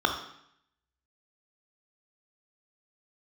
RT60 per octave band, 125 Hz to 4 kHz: 0.85, 0.80, 0.70, 0.75, 0.75, 0.70 seconds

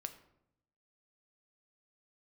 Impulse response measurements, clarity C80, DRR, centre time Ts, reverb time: 15.0 dB, 7.5 dB, 8 ms, 0.80 s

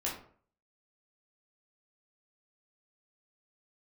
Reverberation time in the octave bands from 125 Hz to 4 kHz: 0.55, 0.50, 0.55, 0.50, 0.40, 0.30 seconds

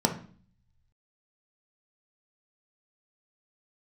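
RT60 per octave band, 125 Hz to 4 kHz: 1.3, 0.75, 0.45, 0.45, 0.40, 0.45 seconds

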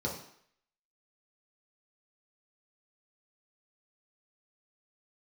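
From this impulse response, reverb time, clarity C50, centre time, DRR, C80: 0.65 s, 5.5 dB, 31 ms, −3.5 dB, 9.5 dB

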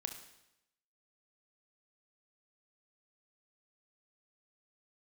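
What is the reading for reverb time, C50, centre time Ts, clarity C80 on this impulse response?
0.85 s, 8.0 dB, 20 ms, 11.0 dB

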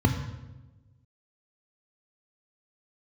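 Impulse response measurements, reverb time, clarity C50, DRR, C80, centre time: 1.1 s, 7.5 dB, 5.0 dB, 9.0 dB, 27 ms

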